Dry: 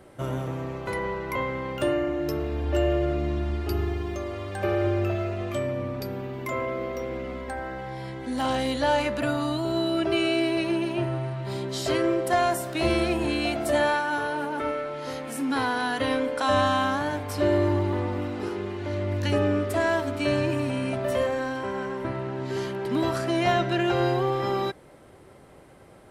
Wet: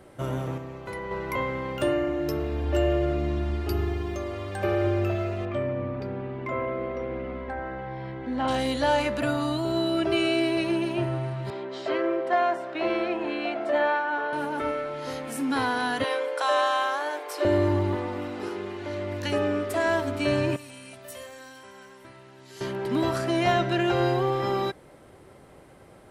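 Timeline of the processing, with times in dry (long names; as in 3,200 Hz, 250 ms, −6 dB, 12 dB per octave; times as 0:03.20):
0:00.58–0:01.11: clip gain −5.5 dB
0:05.45–0:08.48: low-pass filter 2,400 Hz
0:11.50–0:14.33: band-pass filter 350–2,400 Hz
0:16.04–0:17.45: Chebyshev high-pass filter 330 Hz, order 6
0:17.95–0:19.86: low-shelf EQ 170 Hz −11 dB
0:20.56–0:22.61: first-order pre-emphasis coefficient 0.9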